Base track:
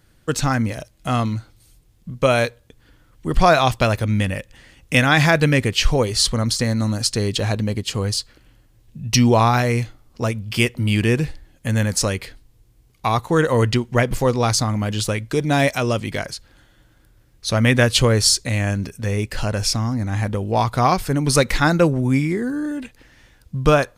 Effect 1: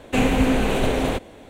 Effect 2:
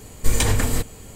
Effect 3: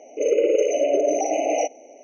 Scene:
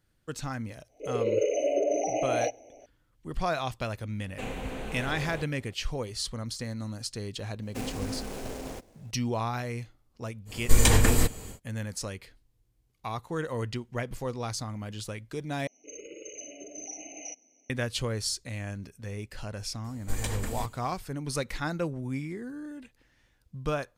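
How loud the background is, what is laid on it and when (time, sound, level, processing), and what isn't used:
base track −15.5 dB
0:00.83: mix in 3 −6.5 dB + fade in at the beginning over 0.55 s
0:04.25: mix in 1 −15.5 dB + parametric band 260 Hz −7.5 dB 0.27 octaves
0:07.62: mix in 1 −16.5 dB + short delay modulated by noise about 5,800 Hz, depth 0.064 ms
0:10.45: mix in 2 −0.5 dB, fades 0.10 s
0:15.67: overwrite with 3 −8.5 dB + drawn EQ curve 190 Hz 0 dB, 540 Hz −23 dB, 5,800 Hz +3 dB
0:19.84: mix in 2 −13.5 dB

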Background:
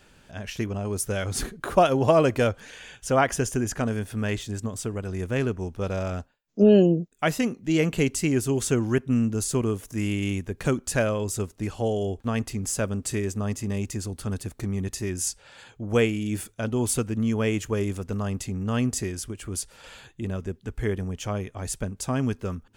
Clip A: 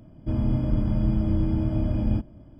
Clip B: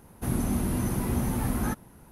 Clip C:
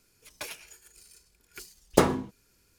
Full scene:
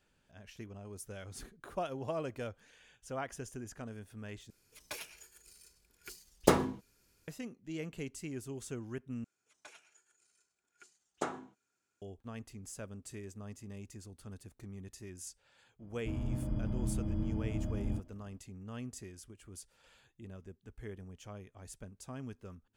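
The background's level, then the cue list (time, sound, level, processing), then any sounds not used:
background −18.5 dB
0:04.50: overwrite with C −4.5 dB
0:09.24: overwrite with C −16.5 dB + loudspeaker in its box 180–8,600 Hz, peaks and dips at 190 Hz −4 dB, 500 Hz −4 dB, 750 Hz +7 dB, 1,400 Hz +8 dB, 4,800 Hz −7 dB, 7,100 Hz +4 dB
0:15.79: mix in A −12 dB
not used: B

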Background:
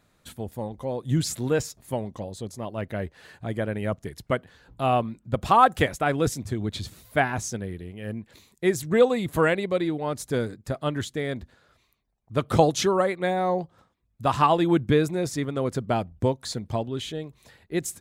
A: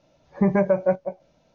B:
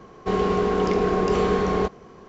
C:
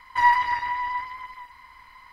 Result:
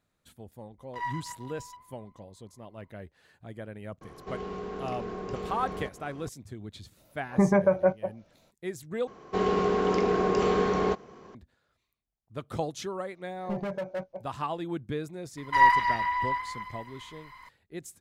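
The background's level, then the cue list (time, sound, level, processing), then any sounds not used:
background −13 dB
0:00.78: mix in C −16 dB + adaptive Wiener filter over 25 samples
0:04.01: mix in B −3 dB + downward compressor 2 to 1, threshold −41 dBFS
0:06.97: mix in A −2.5 dB + parametric band 1,300 Hz +4 dB 0.55 octaves
0:09.07: overwrite with B −3 dB + low-shelf EQ 93 Hz −9.5 dB
0:13.08: mix in A −10.5 dB + gain into a clipping stage and back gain 18.5 dB
0:15.37: mix in C −1 dB

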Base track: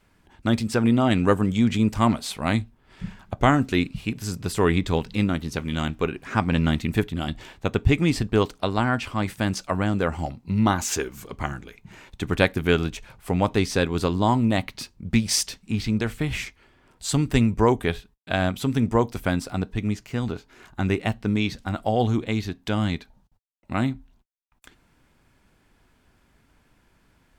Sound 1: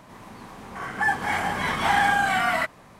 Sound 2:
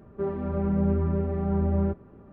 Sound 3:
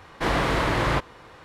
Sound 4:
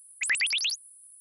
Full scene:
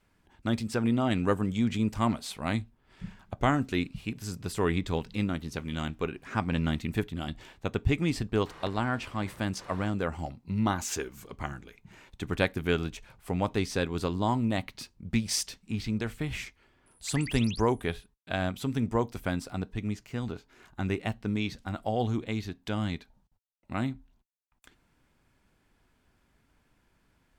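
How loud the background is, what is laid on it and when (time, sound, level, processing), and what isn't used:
base track −7 dB
0:08.46: mix in 3 −1 dB + gate with flip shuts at −27 dBFS, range −28 dB
0:16.86: mix in 4 −14 dB
not used: 1, 2

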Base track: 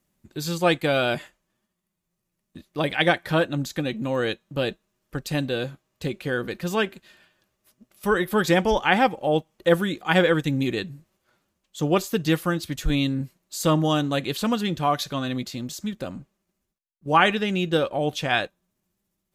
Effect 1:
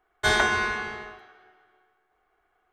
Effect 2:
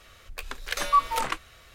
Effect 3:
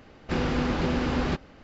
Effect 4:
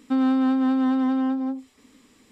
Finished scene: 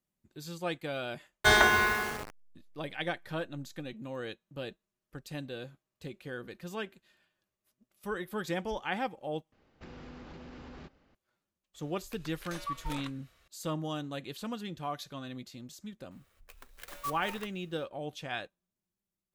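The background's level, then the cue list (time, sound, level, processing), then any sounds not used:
base track −14.5 dB
0:01.21: mix in 1 + hold until the input has moved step −33 dBFS
0:09.52: overwrite with 3 −16.5 dB + downward compressor, threshold −27 dBFS
0:11.74: mix in 2 −13.5 dB + brickwall limiter −16 dBFS
0:16.11: mix in 2 −17 dB + converter with an unsteady clock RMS 0.049 ms
not used: 4

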